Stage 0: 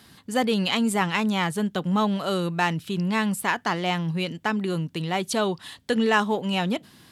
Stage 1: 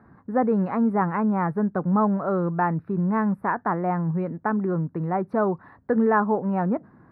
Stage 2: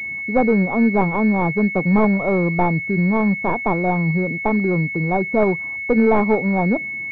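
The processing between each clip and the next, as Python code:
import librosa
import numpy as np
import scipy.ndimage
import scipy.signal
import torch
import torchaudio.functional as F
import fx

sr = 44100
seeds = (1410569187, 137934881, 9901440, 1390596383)

y1 = scipy.signal.sosfilt(scipy.signal.cheby2(4, 40, 2900.0, 'lowpass', fs=sr, output='sos'), x)
y1 = F.gain(torch.from_numpy(y1), 2.0).numpy()
y2 = fx.tracing_dist(y1, sr, depth_ms=0.39)
y2 = fx.pwm(y2, sr, carrier_hz=2200.0)
y2 = F.gain(torch.from_numpy(y2), 5.5).numpy()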